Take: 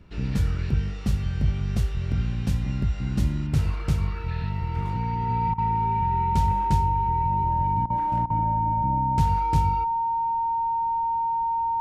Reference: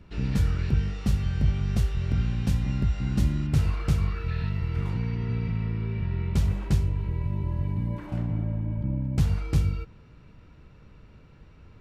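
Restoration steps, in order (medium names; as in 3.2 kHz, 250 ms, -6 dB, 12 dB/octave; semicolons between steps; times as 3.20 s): band-stop 920 Hz, Q 30; interpolate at 5.54/7.86/8.26 s, 40 ms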